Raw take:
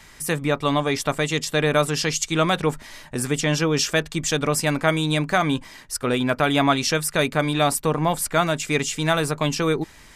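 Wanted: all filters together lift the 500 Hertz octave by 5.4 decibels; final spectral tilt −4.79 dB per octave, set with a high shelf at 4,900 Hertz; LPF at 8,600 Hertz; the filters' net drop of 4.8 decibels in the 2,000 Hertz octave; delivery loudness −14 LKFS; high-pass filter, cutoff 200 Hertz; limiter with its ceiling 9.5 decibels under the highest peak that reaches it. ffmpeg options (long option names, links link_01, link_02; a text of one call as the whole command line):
ffmpeg -i in.wav -af "highpass=200,lowpass=8600,equalizer=frequency=500:width_type=o:gain=7,equalizer=frequency=2000:width_type=o:gain=-5.5,highshelf=frequency=4900:gain=-8.5,volume=10.5dB,alimiter=limit=-3dB:level=0:latency=1" out.wav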